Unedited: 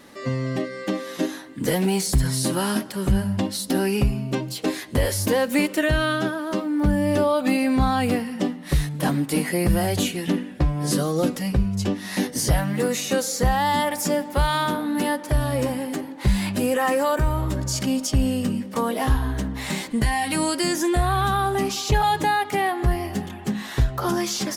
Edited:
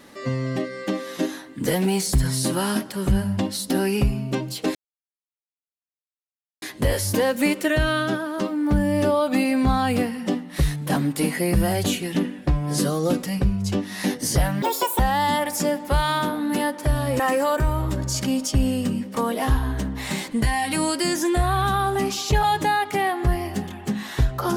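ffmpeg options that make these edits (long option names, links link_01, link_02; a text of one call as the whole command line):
ffmpeg -i in.wav -filter_complex "[0:a]asplit=5[link_01][link_02][link_03][link_04][link_05];[link_01]atrim=end=4.75,asetpts=PTS-STARTPTS,afade=type=out:start_time=4.746:duration=0.004:curve=hsin,apad=pad_dur=1.87[link_06];[link_02]atrim=start=4.75:end=12.754,asetpts=PTS-STARTPTS,afade=type=in:duration=0.004:curve=hsin[link_07];[link_03]atrim=start=12.75:end=13.45,asetpts=PTS-STARTPTS,asetrate=82026,aresample=44100[link_08];[link_04]atrim=start=13.446:end=15.652[link_09];[link_05]atrim=start=16.788[link_10];[link_06][link_07]concat=n=2:v=0:a=1[link_11];[link_11][link_08]acrossfade=duration=0.004:curve1=hsin:curve2=hsin[link_12];[link_12][link_09]acrossfade=duration=0.004:curve1=hsin:curve2=hsin[link_13];[link_13][link_10]acrossfade=duration=0.004:curve1=hsin:curve2=hsin" out.wav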